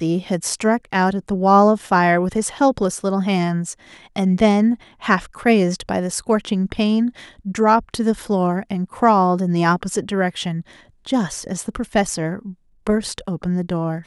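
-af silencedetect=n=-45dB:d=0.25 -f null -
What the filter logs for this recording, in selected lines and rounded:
silence_start: 12.54
silence_end: 12.87 | silence_duration: 0.33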